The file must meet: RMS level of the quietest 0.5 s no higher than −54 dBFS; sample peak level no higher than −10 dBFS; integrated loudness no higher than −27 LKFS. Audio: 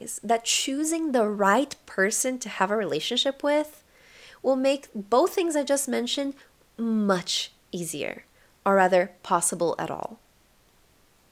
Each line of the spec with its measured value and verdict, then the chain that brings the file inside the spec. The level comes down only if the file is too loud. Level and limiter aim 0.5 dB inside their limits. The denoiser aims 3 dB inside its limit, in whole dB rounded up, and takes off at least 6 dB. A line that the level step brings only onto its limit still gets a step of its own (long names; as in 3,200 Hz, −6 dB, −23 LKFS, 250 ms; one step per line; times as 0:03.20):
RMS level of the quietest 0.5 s −61 dBFS: in spec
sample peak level −5.5 dBFS: out of spec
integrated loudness −25.0 LKFS: out of spec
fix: level −2.5 dB
brickwall limiter −10.5 dBFS